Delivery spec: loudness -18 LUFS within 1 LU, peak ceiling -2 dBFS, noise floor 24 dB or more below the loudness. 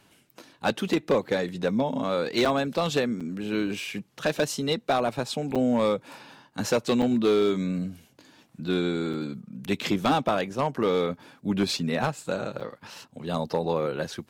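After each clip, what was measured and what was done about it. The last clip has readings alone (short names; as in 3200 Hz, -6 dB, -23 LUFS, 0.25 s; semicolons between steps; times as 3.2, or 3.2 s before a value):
clipped 0.6%; flat tops at -16.0 dBFS; dropouts 6; longest dropout 6.2 ms; loudness -27.0 LUFS; peak -16.0 dBFS; loudness target -18.0 LUFS
-> clip repair -16 dBFS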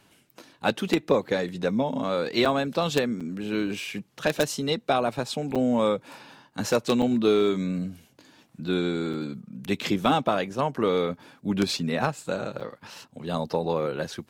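clipped 0.0%; dropouts 6; longest dropout 6.2 ms
-> interpolate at 2.45/3.2/5.55/7.02/9.13/12.6, 6.2 ms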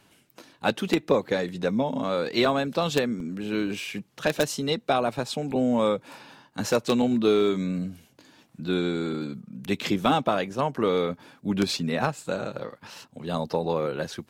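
dropouts 0; loudness -26.5 LUFS; peak -7.0 dBFS; loudness target -18.0 LUFS
-> gain +8.5 dB; limiter -2 dBFS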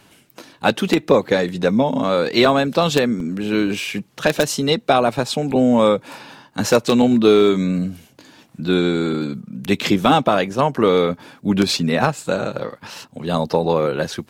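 loudness -18.5 LUFS; peak -2.0 dBFS; noise floor -53 dBFS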